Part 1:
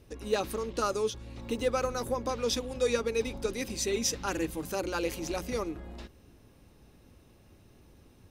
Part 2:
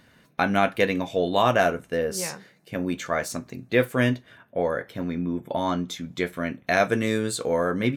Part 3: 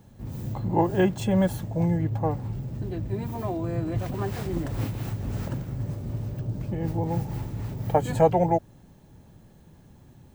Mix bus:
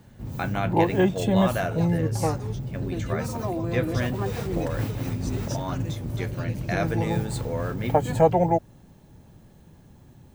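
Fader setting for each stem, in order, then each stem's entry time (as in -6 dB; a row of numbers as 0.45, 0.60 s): -10.5, -7.5, +1.0 dB; 1.45, 0.00, 0.00 s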